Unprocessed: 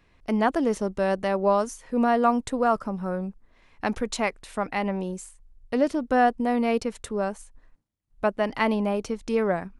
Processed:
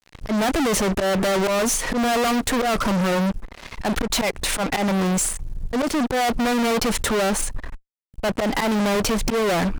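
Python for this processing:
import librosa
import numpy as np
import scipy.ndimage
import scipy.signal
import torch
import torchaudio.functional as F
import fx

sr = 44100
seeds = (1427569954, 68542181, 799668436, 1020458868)

y = fx.auto_swell(x, sr, attack_ms=239.0)
y = fx.fuzz(y, sr, gain_db=48.0, gate_db=-55.0)
y = y * librosa.db_to_amplitude(-6.0)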